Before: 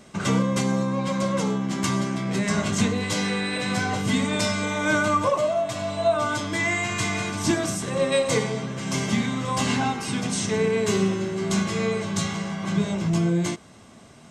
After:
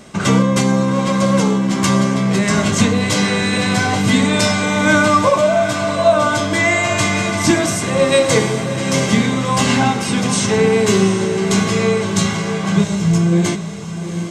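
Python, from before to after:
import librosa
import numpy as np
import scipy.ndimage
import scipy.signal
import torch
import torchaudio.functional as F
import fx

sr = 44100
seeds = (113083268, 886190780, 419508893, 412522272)

p1 = fx.spec_box(x, sr, start_s=12.83, length_s=0.49, low_hz=200.0, high_hz=5100.0, gain_db=-6)
p2 = p1 + fx.echo_diffused(p1, sr, ms=747, feedback_pct=46, wet_db=-10.0, dry=0)
y = F.gain(torch.from_numpy(p2), 8.5).numpy()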